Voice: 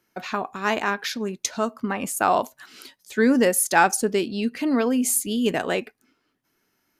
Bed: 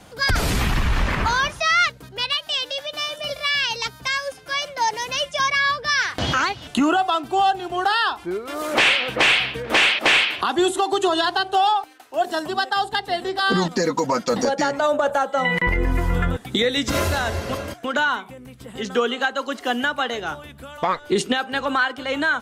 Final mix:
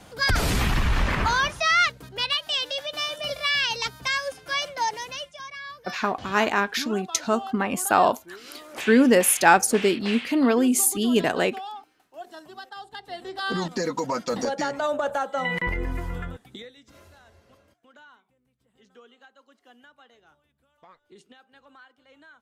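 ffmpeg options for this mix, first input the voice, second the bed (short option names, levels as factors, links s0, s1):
-filter_complex "[0:a]adelay=5700,volume=1.19[s0];[1:a]volume=3.35,afade=t=out:st=4.64:d=0.73:silence=0.149624,afade=t=in:st=12.87:d=0.9:silence=0.237137,afade=t=out:st=15.6:d=1.15:silence=0.0562341[s1];[s0][s1]amix=inputs=2:normalize=0"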